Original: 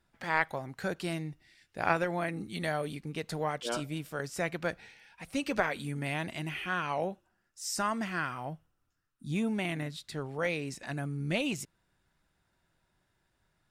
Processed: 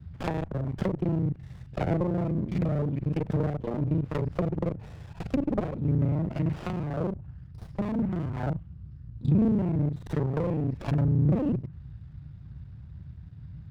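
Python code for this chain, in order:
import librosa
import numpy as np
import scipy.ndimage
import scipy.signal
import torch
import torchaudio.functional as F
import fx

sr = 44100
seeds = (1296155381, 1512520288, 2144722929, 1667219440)

y = fx.local_reverse(x, sr, ms=34.0)
y = fx.env_lowpass_down(y, sr, base_hz=420.0, full_db=-31.0)
y = scipy.signal.sosfilt(scipy.signal.ellip(4, 1.0, 40, 4900.0, 'lowpass', fs=sr, output='sos'), y)
y = fx.peak_eq(y, sr, hz=110.0, db=10.0, octaves=1.2)
y = fx.dmg_noise_band(y, sr, seeds[0], low_hz=49.0, high_hz=150.0, level_db=-51.0)
y = fx.running_max(y, sr, window=17)
y = y * 10.0 ** (8.0 / 20.0)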